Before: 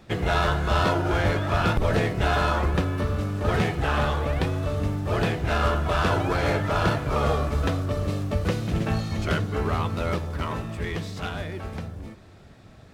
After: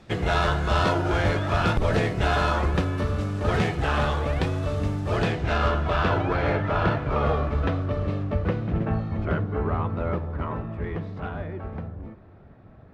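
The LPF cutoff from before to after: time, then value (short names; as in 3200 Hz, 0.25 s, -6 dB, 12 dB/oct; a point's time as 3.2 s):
5.09 s 9500 Hz
5.54 s 5400 Hz
6.41 s 2700 Hz
8.05 s 2700 Hz
8.93 s 1400 Hz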